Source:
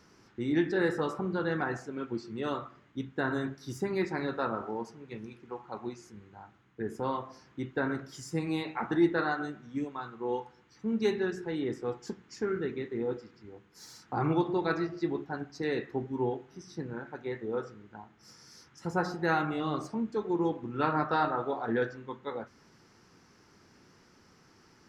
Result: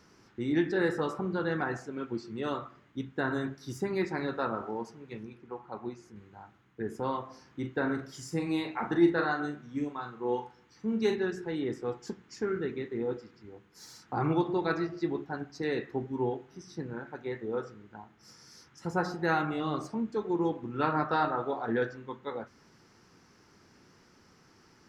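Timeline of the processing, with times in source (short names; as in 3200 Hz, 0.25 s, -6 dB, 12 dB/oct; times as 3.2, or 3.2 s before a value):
5.23–6.16 high shelf 2700 Hz -7.5 dB
7.27–11.16 doubler 41 ms -8.5 dB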